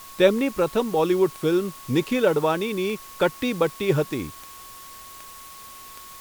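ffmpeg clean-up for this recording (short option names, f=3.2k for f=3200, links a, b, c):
-af "adeclick=t=4,bandreject=f=1.1k:w=30,afwtdn=0.0063"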